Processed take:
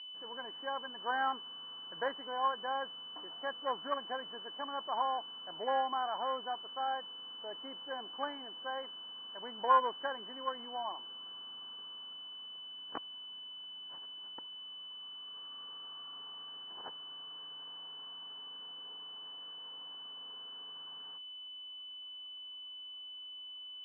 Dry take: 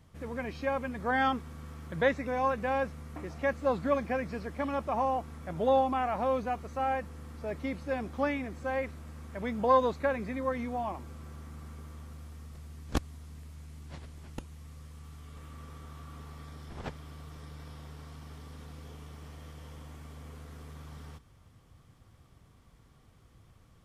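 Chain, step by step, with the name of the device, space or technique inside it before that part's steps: toy sound module (decimation joined by straight lines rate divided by 6×; class-D stage that switches slowly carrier 3 kHz; cabinet simulation 530–3700 Hz, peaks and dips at 570 Hz -5 dB, 1 kHz +7 dB, 1.6 kHz +8 dB, 2.3 kHz -4 dB, 3.4 kHz -10 dB); trim -4 dB

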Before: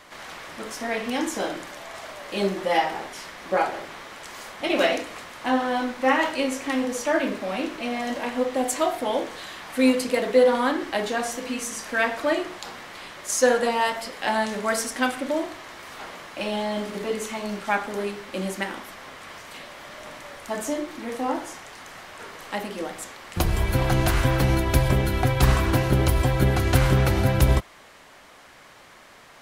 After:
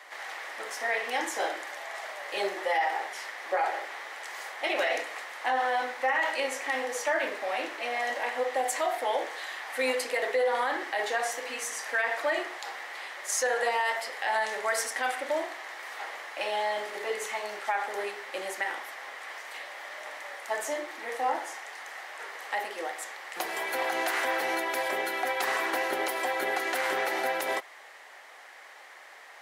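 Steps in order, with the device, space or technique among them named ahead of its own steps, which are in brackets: laptop speaker (high-pass 410 Hz 24 dB/octave; peaking EQ 800 Hz +7 dB 0.25 oct; peaking EQ 1.9 kHz +9 dB 0.41 oct; peak limiter -15 dBFS, peak gain reduction 11 dB); trim -3.5 dB

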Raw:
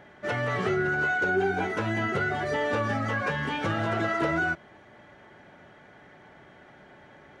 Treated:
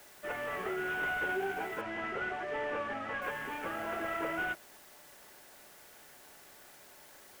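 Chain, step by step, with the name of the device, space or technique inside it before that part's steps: army field radio (band-pass 350–2900 Hz; CVSD coder 16 kbps; white noise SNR 19 dB); 1.81–3.22 s: low-pass 5 kHz 12 dB/octave; trim -7 dB

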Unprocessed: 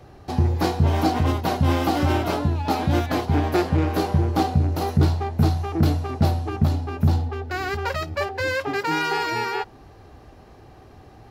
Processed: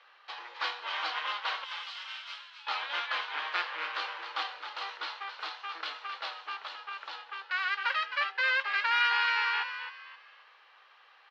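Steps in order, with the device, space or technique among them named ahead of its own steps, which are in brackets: inverse Chebyshev high-pass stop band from 180 Hz, stop band 80 dB; 1.64–2.67 s: differentiator; frequency-shifting delay pedal into a guitar cabinet (frequency-shifting echo 263 ms, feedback 32%, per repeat +79 Hz, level -9.5 dB; cabinet simulation 100–3900 Hz, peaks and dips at 140 Hz +9 dB, 200 Hz -5 dB, 310 Hz +8 dB, 500 Hz +10 dB, 740 Hz -8 dB, 3.1 kHz +4 dB)

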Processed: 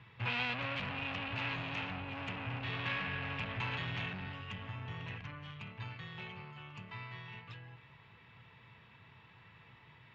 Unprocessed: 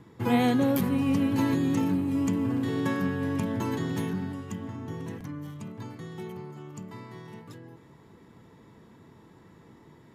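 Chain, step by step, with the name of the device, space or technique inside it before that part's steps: scooped metal amplifier (valve stage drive 32 dB, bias 0.55; cabinet simulation 76–3500 Hz, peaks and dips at 120 Hz +7 dB, 280 Hz +6 dB, 2.6 kHz +10 dB; amplifier tone stack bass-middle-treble 10-0-10); trim +9 dB

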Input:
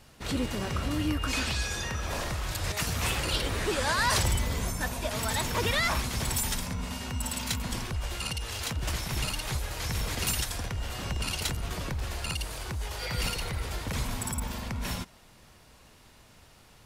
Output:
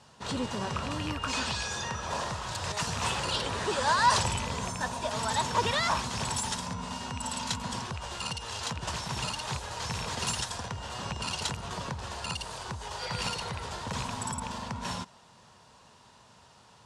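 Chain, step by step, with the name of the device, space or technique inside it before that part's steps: car door speaker with a rattle (rattle on loud lows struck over -26 dBFS, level -22 dBFS; cabinet simulation 110–8600 Hz, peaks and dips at 310 Hz -8 dB, 960 Hz +8 dB, 2.2 kHz -7 dB)

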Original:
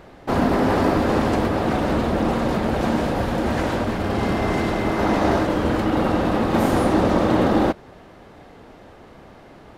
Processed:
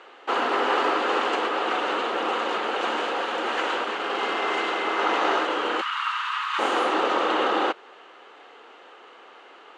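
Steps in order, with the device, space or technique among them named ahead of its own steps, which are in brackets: 5.81–6.59 s: steep high-pass 970 Hz 72 dB/octave; phone speaker on a table (cabinet simulation 420–7300 Hz, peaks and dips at 620 Hz -9 dB, 1.3 kHz +6 dB, 2.9 kHz +9 dB, 5.3 kHz -7 dB)

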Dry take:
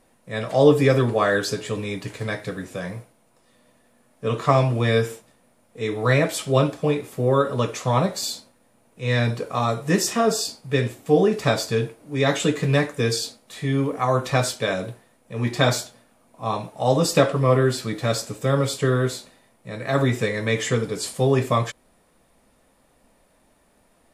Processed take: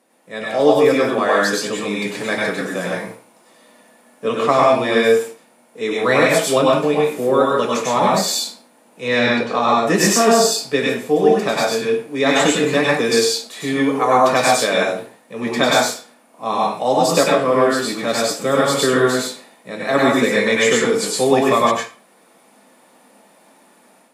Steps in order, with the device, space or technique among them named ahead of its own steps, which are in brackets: 9.08–9.87 s: low-pass 5.3 kHz 12 dB/octave; far laptop microphone (reverberation RT60 0.35 s, pre-delay 93 ms, DRR -3 dB; high-pass 200 Hz 24 dB/octave; level rider gain up to 6.5 dB)

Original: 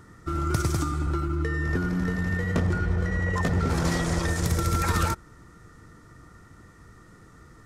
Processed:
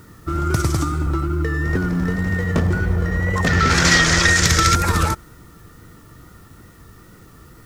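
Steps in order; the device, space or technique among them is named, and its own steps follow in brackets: 3.47–4.75 s: high-order bell 3.1 kHz +13 dB 2.7 oct; plain cassette with noise reduction switched in (tape noise reduction on one side only decoder only; wow and flutter; white noise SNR 36 dB); trim +6 dB

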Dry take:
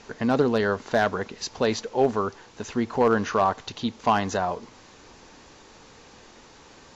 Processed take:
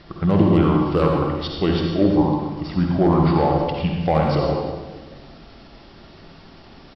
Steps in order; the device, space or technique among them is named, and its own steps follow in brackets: monster voice (pitch shift -5 st; bass shelf 220 Hz +8 dB; reverberation RT60 1.4 s, pre-delay 49 ms, DRR 0 dB)

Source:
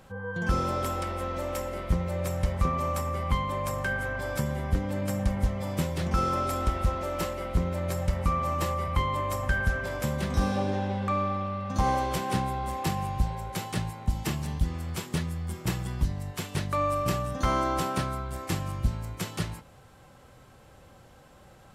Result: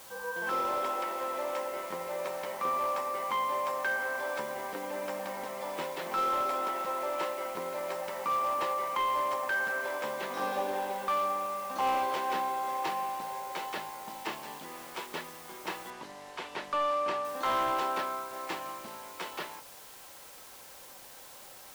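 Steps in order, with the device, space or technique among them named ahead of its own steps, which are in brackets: high-pass 270 Hz 12 dB/octave; drive-through speaker (band-pass 390–3500 Hz; peaking EQ 940 Hz +7 dB 0.21 oct; hard clipper -25 dBFS, distortion -18 dB; white noise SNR 17 dB); 15.90–17.25 s: distance through air 56 m

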